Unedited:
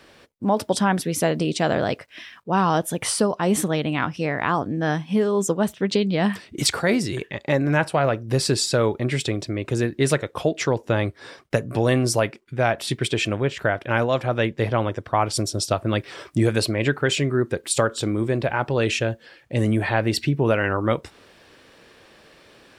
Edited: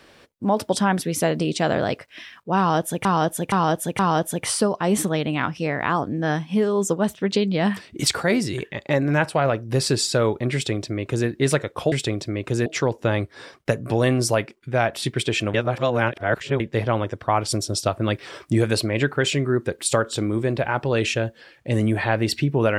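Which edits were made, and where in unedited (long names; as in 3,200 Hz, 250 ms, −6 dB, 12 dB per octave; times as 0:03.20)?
0:02.58–0:03.05: repeat, 4 plays
0:09.13–0:09.87: duplicate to 0:10.51
0:13.39–0:14.45: reverse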